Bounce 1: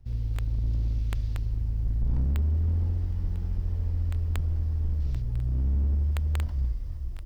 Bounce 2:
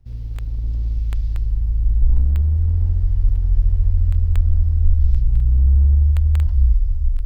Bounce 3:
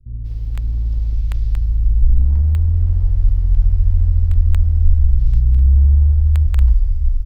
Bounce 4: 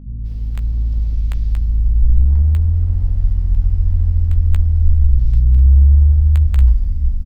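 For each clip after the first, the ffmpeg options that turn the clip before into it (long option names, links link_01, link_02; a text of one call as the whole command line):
ffmpeg -i in.wav -af "asubboost=boost=10:cutoff=63" out.wav
ffmpeg -i in.wav -filter_complex "[0:a]acrossover=split=390[link_01][link_02];[link_02]adelay=190[link_03];[link_01][link_03]amix=inputs=2:normalize=0,volume=2.5dB" out.wav
ffmpeg -i in.wav -filter_complex "[0:a]aeval=exprs='val(0)+0.02*(sin(2*PI*50*n/s)+sin(2*PI*2*50*n/s)/2+sin(2*PI*3*50*n/s)/3+sin(2*PI*4*50*n/s)/4+sin(2*PI*5*50*n/s)/5)':channel_layout=same,asplit=2[link_01][link_02];[link_02]adelay=15,volume=-10.5dB[link_03];[link_01][link_03]amix=inputs=2:normalize=0" out.wav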